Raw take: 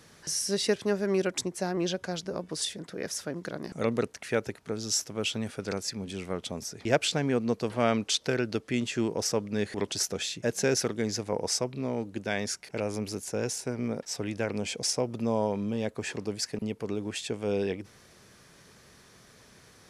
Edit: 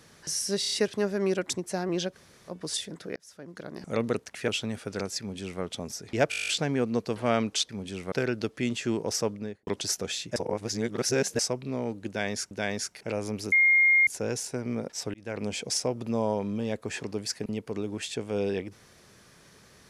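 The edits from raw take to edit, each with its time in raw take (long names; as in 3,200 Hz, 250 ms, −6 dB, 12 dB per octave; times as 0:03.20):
0:00.60: stutter 0.03 s, 5 plays
0:02.02–0:02.38: fill with room tone, crossfade 0.06 s
0:03.04–0:03.83: fade in
0:04.36–0:05.20: remove
0:05.91–0:06.34: duplicate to 0:08.23
0:07.02: stutter 0.02 s, 10 plays
0:09.37–0:09.78: fade out and dull
0:10.47–0:11.50: reverse
0:12.19–0:12.62: repeat, 2 plays
0:13.20: insert tone 2,130 Hz −17 dBFS 0.55 s
0:14.27–0:14.56: fade in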